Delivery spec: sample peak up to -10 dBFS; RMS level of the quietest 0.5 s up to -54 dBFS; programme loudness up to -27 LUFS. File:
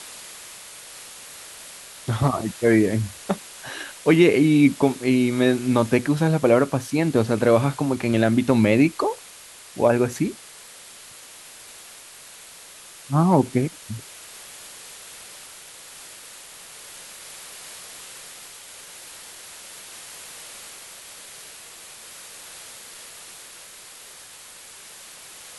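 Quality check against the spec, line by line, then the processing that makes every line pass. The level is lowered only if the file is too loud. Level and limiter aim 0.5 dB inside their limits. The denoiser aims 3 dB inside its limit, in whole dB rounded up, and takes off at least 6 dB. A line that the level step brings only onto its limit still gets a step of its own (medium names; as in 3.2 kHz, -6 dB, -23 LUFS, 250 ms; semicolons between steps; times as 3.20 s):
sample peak -4.5 dBFS: fail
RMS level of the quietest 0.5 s -44 dBFS: fail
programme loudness -20.5 LUFS: fail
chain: noise reduction 6 dB, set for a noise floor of -44 dBFS; trim -7 dB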